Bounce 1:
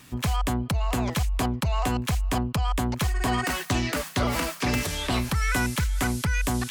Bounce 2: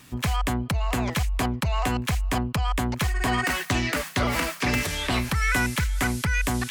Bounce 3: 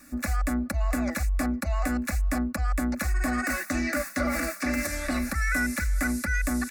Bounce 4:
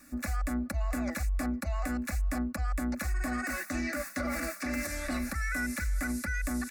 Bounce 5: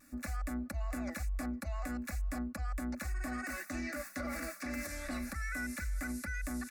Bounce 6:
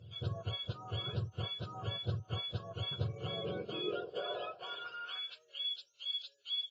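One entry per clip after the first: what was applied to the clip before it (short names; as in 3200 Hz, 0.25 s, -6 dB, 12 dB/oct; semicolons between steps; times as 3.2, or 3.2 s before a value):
dynamic EQ 2000 Hz, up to +5 dB, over -42 dBFS, Q 1.4
comb 3.5 ms, depth 56%; limiter -15.5 dBFS, peak gain reduction 4.5 dB; fixed phaser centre 630 Hz, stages 8
limiter -20 dBFS, peak gain reduction 5 dB; gain -4 dB
vibrato 0.37 Hz 9.4 cents; gain -6 dB
spectrum mirrored in octaves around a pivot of 910 Hz; high-pass sweep 110 Hz -> 3700 Hz, 3.06–5.77; AAC 24 kbps 16000 Hz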